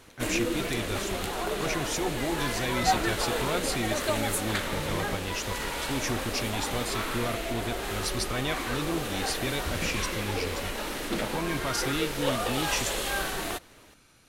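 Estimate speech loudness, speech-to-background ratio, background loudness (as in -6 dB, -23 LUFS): -33.5 LUFS, -2.5 dB, -31.0 LUFS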